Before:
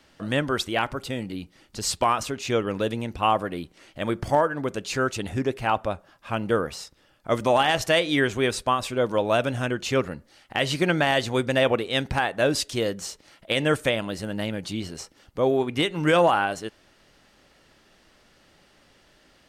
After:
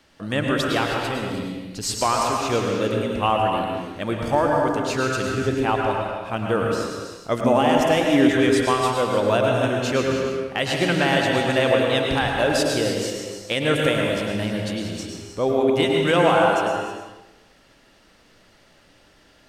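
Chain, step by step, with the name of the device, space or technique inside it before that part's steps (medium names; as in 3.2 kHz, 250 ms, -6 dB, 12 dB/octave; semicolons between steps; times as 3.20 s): bathroom (reverberation RT60 0.95 s, pre-delay 97 ms, DRR 1.5 dB); 7.44–8.29 s: fifteen-band graphic EQ 250 Hz +9 dB, 1.6 kHz -5 dB, 4 kHz -9 dB, 10 kHz -3 dB; gated-style reverb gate 340 ms rising, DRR 6 dB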